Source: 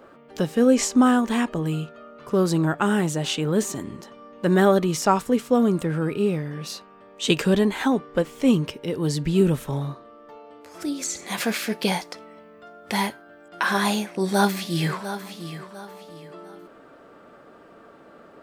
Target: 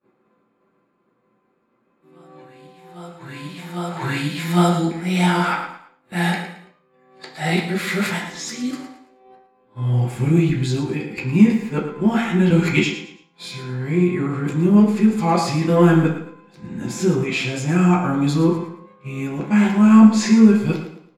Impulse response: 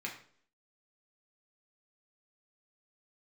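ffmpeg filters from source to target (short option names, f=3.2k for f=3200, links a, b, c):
-filter_complex "[0:a]areverse,agate=range=-33dB:threshold=-36dB:ratio=3:detection=peak,asplit=2[a][b];[b]volume=16dB,asoftclip=hard,volume=-16dB,volume=-10dB[c];[a][c]amix=inputs=2:normalize=0,asetrate=38367,aresample=44100,aecho=1:1:111|222|333:0.282|0.0902|0.0289[d];[1:a]atrim=start_sample=2205,afade=t=out:st=0.39:d=0.01,atrim=end_sample=17640[e];[d][e]afir=irnorm=-1:irlink=0"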